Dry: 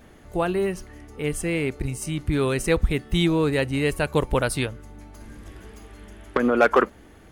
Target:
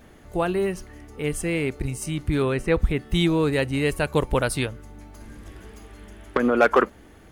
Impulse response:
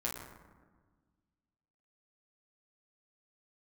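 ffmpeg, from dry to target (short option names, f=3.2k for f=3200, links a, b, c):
-filter_complex "[0:a]asettb=1/sr,asplit=3[a][b][c];[a]atrim=end=2.424[d];[b]atrim=start=2.42:end=3.05,asetpts=PTS-STARTPTS,afade=t=in:d=0.004:c=qsin,afade=t=out:st=0.626:d=0.004:c=qsin,acrossover=split=3000[e][f];[f]acompressor=threshold=-46dB:ratio=4:attack=1:release=60[g];[e][g]amix=inputs=2:normalize=0[h];[c]atrim=start=3.046[i];[d][h]acrossfade=d=0.004:c1=hsin:c2=qsin[j];[j][i]acrossfade=d=0.004:c1=qsin:c2=hsin,acrusher=bits=11:mix=0:aa=0.000001"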